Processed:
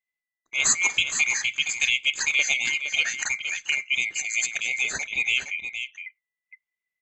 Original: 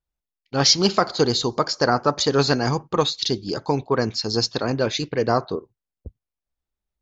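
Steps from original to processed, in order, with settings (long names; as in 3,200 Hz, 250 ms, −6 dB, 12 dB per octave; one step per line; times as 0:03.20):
neighbouring bands swapped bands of 2,000 Hz
on a send: single-tap delay 465 ms −8.5 dB
on the sum: level −4.5 dB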